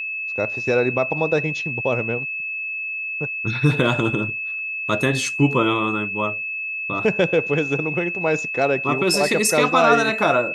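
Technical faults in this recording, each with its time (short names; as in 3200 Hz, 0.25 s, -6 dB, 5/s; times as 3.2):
tone 2600 Hz -25 dBFS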